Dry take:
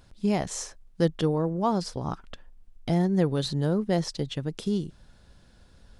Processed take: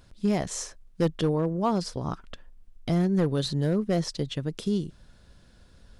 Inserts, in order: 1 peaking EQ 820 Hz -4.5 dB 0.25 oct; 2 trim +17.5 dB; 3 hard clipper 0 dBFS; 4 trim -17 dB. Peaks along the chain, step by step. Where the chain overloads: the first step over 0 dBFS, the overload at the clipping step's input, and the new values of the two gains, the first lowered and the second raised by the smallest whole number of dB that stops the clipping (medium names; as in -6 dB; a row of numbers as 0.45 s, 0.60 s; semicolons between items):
-10.0 dBFS, +7.5 dBFS, 0.0 dBFS, -17.0 dBFS; step 2, 7.5 dB; step 2 +9.5 dB, step 4 -9 dB